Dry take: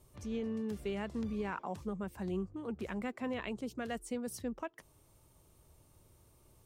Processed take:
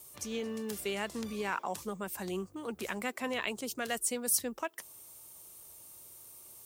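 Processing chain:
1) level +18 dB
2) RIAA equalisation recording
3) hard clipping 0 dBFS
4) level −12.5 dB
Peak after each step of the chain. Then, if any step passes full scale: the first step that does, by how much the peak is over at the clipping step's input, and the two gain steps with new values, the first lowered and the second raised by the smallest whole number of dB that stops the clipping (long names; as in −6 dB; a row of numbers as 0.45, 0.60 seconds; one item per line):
−7.0, −4.0, −4.0, −16.5 dBFS
no step passes full scale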